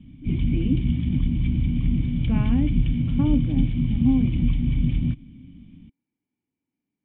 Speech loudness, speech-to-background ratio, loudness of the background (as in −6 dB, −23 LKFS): −27.0 LKFS, −3.0 dB, −24.0 LKFS